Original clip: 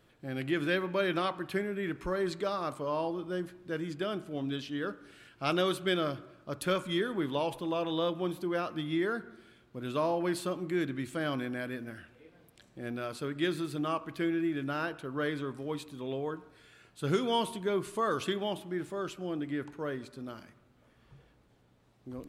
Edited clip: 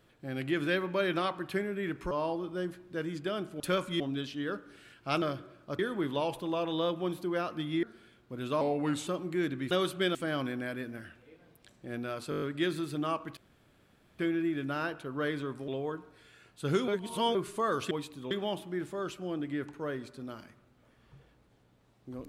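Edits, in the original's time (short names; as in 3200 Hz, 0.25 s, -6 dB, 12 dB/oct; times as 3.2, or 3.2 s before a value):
2.11–2.86 cut
5.57–6.01 move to 11.08
6.58–6.98 move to 4.35
9.02–9.27 cut
10.05–10.44 speed 85%
13.23 stutter 0.02 s, 7 plays
14.18 insert room tone 0.82 s
15.67–16.07 move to 18.3
17.27–17.74 reverse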